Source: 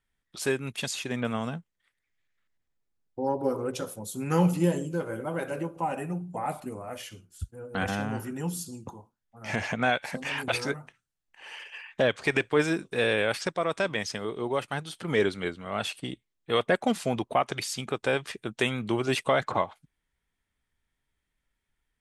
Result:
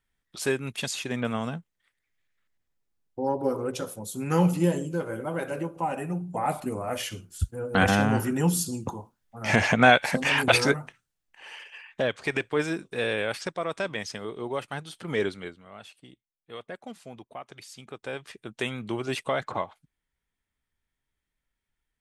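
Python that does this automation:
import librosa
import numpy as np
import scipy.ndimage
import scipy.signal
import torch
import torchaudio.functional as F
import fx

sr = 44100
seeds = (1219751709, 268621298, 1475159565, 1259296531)

y = fx.gain(x, sr, db=fx.line((6.0, 1.0), (7.04, 8.5), (10.63, 8.5), (11.74, -2.5), (15.29, -2.5), (15.8, -15.5), (17.41, -15.5), (18.67, -3.5)))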